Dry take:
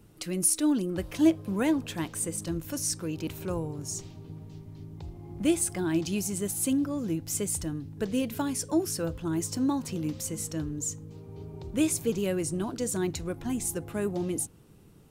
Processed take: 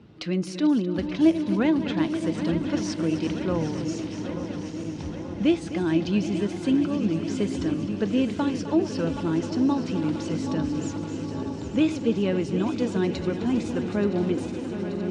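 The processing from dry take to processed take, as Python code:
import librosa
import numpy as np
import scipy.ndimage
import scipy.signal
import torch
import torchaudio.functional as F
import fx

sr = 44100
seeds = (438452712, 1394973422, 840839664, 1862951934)

p1 = fx.reverse_delay_fb(x, sr, ms=440, feedback_pct=83, wet_db=-12.0)
p2 = scipy.signal.sosfilt(scipy.signal.butter(4, 4500.0, 'lowpass', fs=sr, output='sos'), p1)
p3 = fx.peak_eq(p2, sr, hz=220.0, db=4.5, octaves=0.45)
p4 = fx.hum_notches(p3, sr, base_hz=50, count=3)
p5 = fx.rider(p4, sr, range_db=5, speed_s=0.5)
p6 = p4 + (p5 * 10.0 ** (-3.0 / 20.0))
p7 = scipy.signal.sosfilt(scipy.signal.butter(2, 66.0, 'highpass', fs=sr, output='sos'), p6)
p8 = p7 + fx.echo_heads(p7, sr, ms=258, heads='first and third', feedback_pct=64, wet_db=-13.5, dry=0)
y = p8 * 10.0 ** (-1.0 / 20.0)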